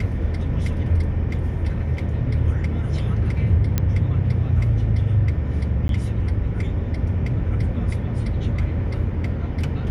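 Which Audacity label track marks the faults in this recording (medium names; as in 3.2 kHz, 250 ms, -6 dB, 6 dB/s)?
3.780000	3.780000	pop -7 dBFS
5.880000	5.890000	dropout 12 ms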